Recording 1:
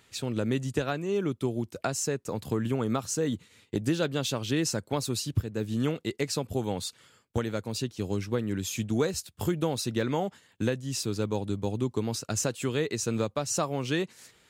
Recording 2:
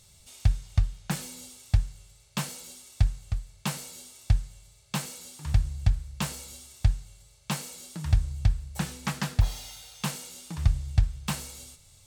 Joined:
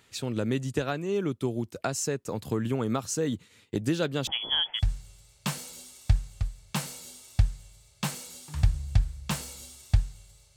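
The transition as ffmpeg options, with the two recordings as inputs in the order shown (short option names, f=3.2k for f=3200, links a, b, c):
-filter_complex "[0:a]asettb=1/sr,asplit=3[a][b][c];[a]atrim=end=4.274[d];[b]atrim=start=4.27:end=4.91,asetpts=PTS-STARTPTS,afade=t=in:d=0.004:c=qsin,afade=t=out:st=0.636:d=0.004:c=qsin,lowpass=f=3k:t=q:w=0.5098,lowpass=f=3k:t=q:w=0.6013,lowpass=f=3k:t=q:w=0.9,lowpass=f=3k:t=q:w=2.563,afreqshift=-3500[e];[c]atrim=start=4.906[f];[d][e]acrossfade=d=0.004:c1=hsin:c2=qsin[g];[g][f]acrossfade=d=0.004:c1=qsin:c2=hsin,apad=whole_dur=10.56,atrim=end=10.56,atrim=end=4.91,asetpts=PTS-STARTPTS[h];[1:a]atrim=start=1.64:end=7.47,asetpts=PTS-STARTPTS[i];[h][i]acrossfade=d=0.18:c1=tri:c2=tri"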